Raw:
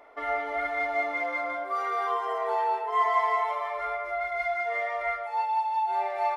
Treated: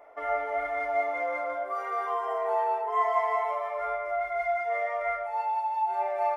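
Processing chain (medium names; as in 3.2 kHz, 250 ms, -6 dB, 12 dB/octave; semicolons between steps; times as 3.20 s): fifteen-band graphic EQ 250 Hz -5 dB, 630 Hz +6 dB, 4 kHz -10 dB; on a send: reverberation RT60 0.55 s, pre-delay 6 ms, DRR 9 dB; on the sum: trim -3 dB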